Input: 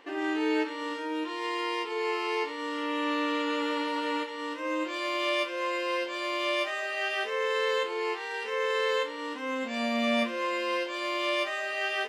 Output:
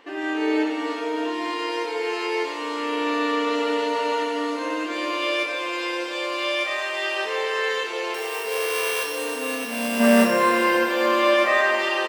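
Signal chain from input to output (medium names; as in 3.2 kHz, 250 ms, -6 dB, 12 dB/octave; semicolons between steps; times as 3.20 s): 8.14–10.31 s: sorted samples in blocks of 16 samples; 10.00–11.76 s: time-frequency box 200–2100 Hz +9 dB; on a send: frequency-shifting echo 94 ms, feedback 45%, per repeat -33 Hz, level -20 dB; on the sum: pitch-shifted reverb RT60 3.3 s, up +7 st, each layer -8 dB, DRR 3 dB; trim +2.5 dB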